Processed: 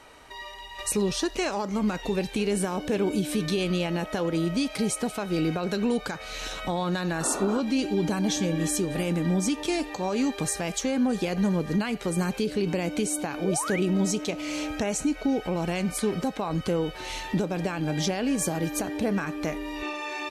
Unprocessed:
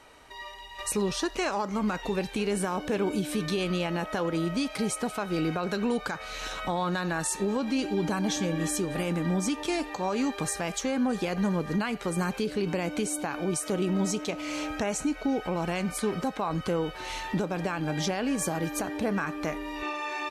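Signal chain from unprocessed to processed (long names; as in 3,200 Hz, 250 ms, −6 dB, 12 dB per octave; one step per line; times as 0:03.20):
sound drawn into the spectrogram noise, 0:07.20–0:07.61, 220–1,500 Hz −33 dBFS
dynamic equaliser 1,200 Hz, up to −6 dB, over −44 dBFS, Q 1
sound drawn into the spectrogram rise, 0:13.38–0:13.80, 280–2,600 Hz −36 dBFS
level +3 dB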